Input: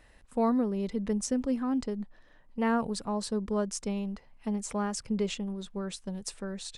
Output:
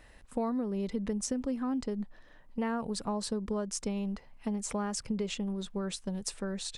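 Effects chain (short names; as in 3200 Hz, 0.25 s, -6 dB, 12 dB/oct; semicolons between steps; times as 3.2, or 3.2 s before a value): compressor 6:1, threshold -32 dBFS, peak gain reduction 9.5 dB; gain +2.5 dB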